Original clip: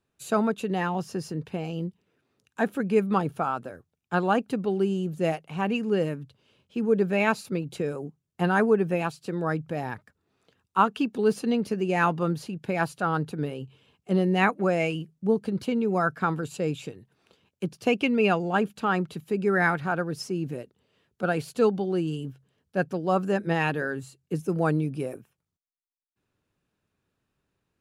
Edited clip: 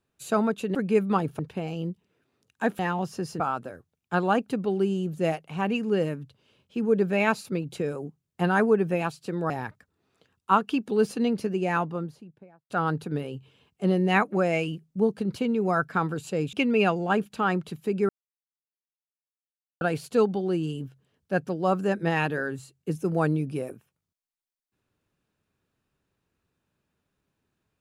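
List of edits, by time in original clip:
0.75–1.36 swap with 2.76–3.4
9.5–9.77 cut
11.62–12.97 studio fade out
16.8–17.97 cut
19.53–21.25 mute

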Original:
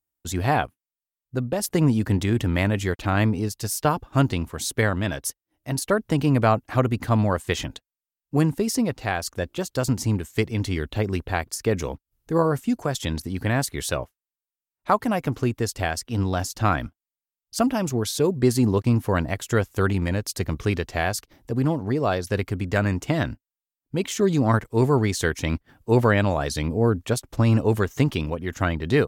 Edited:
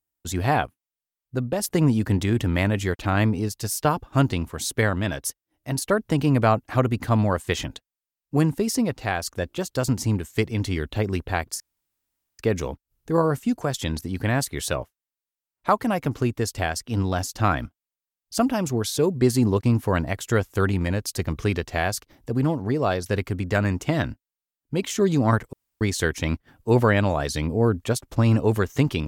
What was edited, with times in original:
11.6 insert room tone 0.79 s
24.74–25.02 room tone

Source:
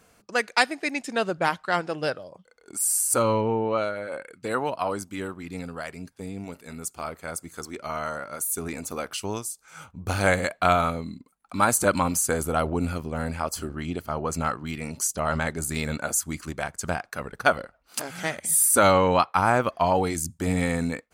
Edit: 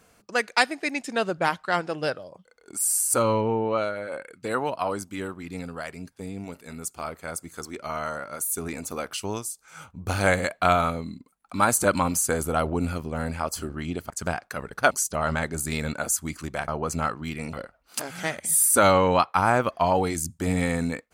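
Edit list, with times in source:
14.1–14.95 swap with 16.72–17.53

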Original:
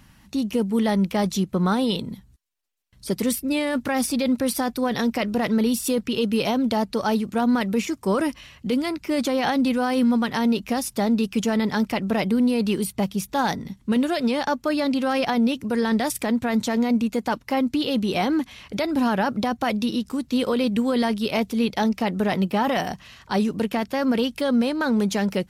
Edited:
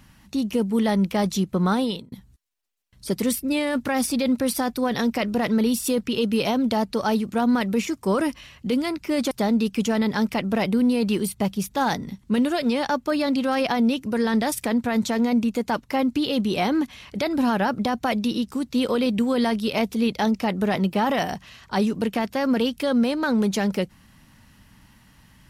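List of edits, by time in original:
1.79–2.12 fade out
9.31–10.89 cut

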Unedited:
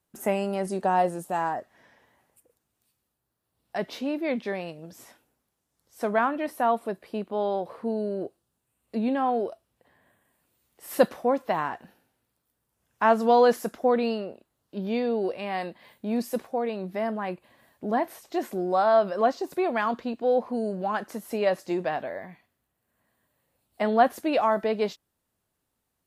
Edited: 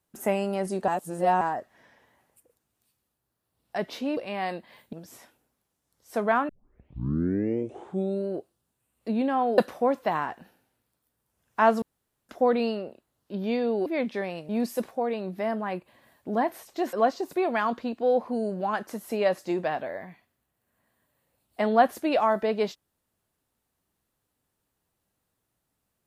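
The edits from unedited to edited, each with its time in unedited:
0.88–1.41 reverse
4.17–4.8 swap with 15.29–16.05
6.36 tape start 1.78 s
9.45–11.01 cut
13.25–13.72 room tone
18.49–19.14 cut

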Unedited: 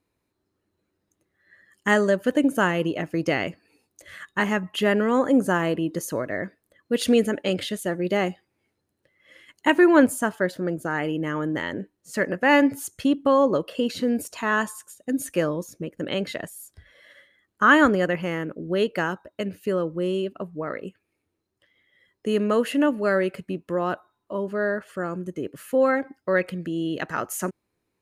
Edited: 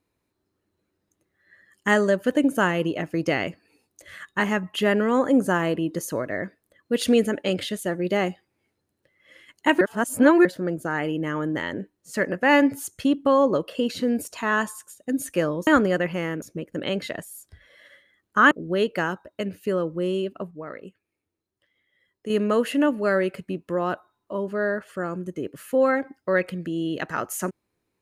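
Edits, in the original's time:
9.81–10.45 reverse
17.76–18.51 move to 15.67
20.51–22.3 gain -6 dB

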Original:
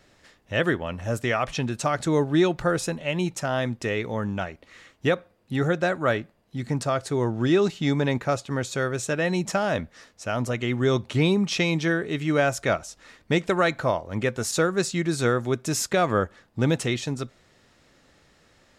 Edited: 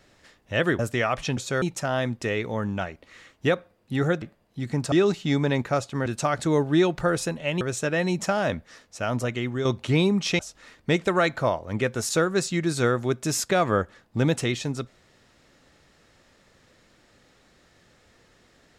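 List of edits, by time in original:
0.79–1.09 cut
1.67–3.22 swap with 8.62–8.87
5.82–6.19 cut
6.89–7.48 cut
10.52–10.91 fade out, to -7.5 dB
11.65–12.81 cut

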